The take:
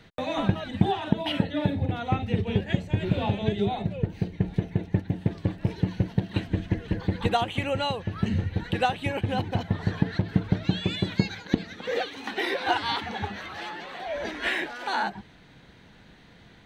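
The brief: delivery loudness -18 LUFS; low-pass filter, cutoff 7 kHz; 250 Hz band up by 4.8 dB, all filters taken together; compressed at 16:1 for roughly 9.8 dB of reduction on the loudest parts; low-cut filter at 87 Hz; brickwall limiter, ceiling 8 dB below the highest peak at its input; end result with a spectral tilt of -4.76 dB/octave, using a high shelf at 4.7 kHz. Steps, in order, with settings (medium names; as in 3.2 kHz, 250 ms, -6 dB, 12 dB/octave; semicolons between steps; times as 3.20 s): high-pass 87 Hz; low-pass 7 kHz; peaking EQ 250 Hz +7 dB; treble shelf 4.7 kHz -5.5 dB; compression 16:1, threshold -24 dBFS; trim +14.5 dB; peak limiter -4.5 dBFS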